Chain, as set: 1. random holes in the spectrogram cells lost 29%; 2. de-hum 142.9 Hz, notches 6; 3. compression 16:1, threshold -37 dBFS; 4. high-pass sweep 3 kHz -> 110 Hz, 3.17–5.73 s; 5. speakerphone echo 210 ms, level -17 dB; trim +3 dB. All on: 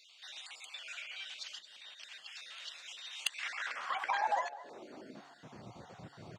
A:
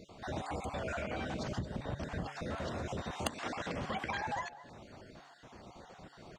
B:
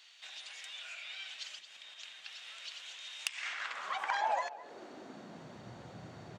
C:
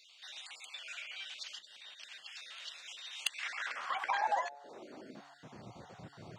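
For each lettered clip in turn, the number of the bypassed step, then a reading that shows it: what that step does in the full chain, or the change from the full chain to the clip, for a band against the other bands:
4, 250 Hz band +16.0 dB; 1, 250 Hz band +2.0 dB; 5, echo-to-direct -19.5 dB to none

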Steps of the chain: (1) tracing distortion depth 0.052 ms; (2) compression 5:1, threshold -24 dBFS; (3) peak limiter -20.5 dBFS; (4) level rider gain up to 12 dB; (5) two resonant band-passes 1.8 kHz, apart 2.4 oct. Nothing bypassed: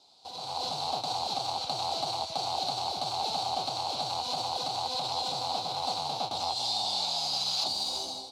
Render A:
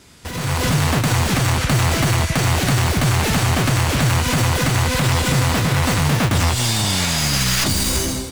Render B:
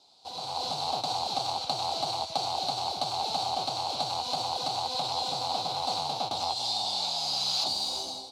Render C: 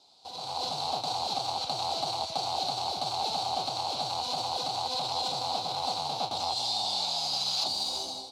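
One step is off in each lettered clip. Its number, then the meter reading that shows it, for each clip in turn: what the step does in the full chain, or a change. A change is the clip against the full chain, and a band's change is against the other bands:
5, 125 Hz band +17.0 dB; 3, crest factor change +1.5 dB; 2, mean gain reduction 3.5 dB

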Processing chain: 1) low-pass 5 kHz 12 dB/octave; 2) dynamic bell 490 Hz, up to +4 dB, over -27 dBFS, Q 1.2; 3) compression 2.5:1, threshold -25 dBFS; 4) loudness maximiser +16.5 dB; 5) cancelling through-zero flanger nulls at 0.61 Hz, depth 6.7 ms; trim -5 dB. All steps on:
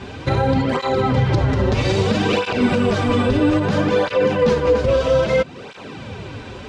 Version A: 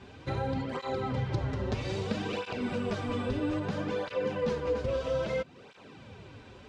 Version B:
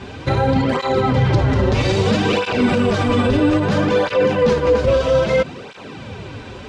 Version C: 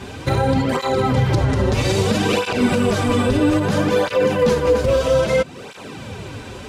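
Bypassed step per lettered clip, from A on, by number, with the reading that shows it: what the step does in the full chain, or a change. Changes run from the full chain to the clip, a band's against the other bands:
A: 4, crest factor change +2.0 dB; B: 3, mean gain reduction 6.5 dB; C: 1, 8 kHz band +7.0 dB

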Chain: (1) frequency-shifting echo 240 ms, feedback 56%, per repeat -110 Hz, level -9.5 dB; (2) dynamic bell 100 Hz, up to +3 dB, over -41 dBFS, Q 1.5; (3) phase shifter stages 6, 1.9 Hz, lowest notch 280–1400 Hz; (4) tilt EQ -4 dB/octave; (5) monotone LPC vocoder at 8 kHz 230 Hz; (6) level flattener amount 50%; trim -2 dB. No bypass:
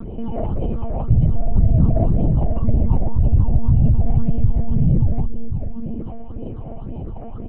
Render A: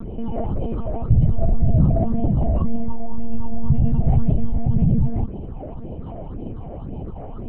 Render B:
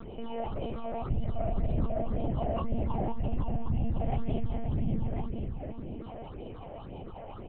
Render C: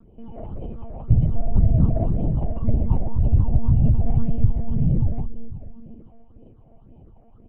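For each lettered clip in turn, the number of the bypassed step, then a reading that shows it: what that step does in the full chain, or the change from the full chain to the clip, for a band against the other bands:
1, 125 Hz band -2.5 dB; 4, 125 Hz band -10.5 dB; 6, crest factor change +3.0 dB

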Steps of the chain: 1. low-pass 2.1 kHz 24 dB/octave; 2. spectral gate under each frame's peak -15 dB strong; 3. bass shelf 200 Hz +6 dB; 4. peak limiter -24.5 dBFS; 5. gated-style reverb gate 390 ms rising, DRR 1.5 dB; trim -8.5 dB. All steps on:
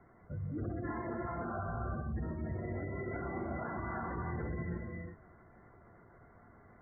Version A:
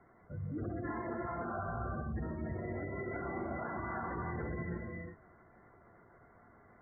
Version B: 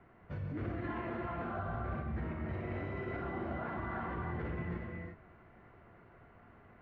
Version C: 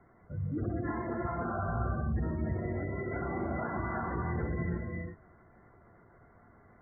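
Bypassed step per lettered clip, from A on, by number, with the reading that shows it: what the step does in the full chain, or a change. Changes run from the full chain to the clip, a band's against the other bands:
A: 3, 125 Hz band -2.5 dB; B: 2, 2 kHz band +2.0 dB; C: 4, mean gain reduction 3.0 dB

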